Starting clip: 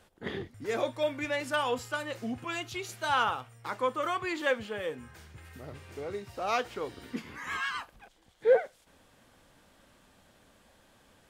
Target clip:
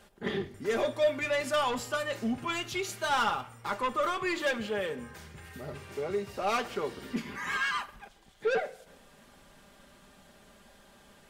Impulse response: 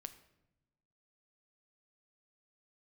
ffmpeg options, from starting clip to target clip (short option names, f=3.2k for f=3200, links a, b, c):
-filter_complex "[0:a]asoftclip=type=tanh:threshold=-27dB,asplit=2[a][b];[1:a]atrim=start_sample=2205,adelay=5[c];[b][c]afir=irnorm=-1:irlink=0,volume=0.5dB[d];[a][d]amix=inputs=2:normalize=0,volume=3dB"